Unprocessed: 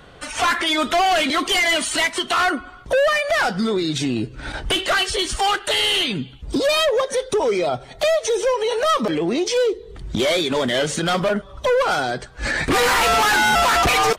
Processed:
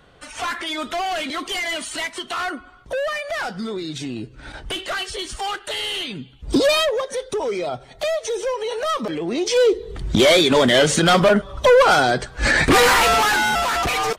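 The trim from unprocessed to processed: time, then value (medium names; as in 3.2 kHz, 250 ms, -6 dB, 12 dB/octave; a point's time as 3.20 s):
6.36 s -7 dB
6.54 s +4.5 dB
7.01 s -4.5 dB
9.24 s -4.5 dB
9.75 s +5.5 dB
12.60 s +5.5 dB
13.65 s -4.5 dB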